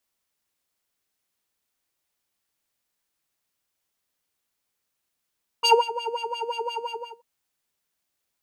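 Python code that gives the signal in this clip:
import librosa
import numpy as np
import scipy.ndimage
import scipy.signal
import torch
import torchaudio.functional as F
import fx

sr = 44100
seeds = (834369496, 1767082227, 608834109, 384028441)

y = fx.sub_patch_wobble(sr, seeds[0], note=82, wave='square', wave2='sine', interval_st=-12, level2_db=-0.5, sub_db=-15.0, noise_db=-19.5, kind='bandpass', cutoff_hz=680.0, q=2.3, env_oct=1.0, env_decay_s=0.27, env_sustain_pct=40, attack_ms=24.0, decay_s=0.2, sustain_db=-17.0, release_s=0.42, note_s=1.17, lfo_hz=5.7, wobble_oct=1.9)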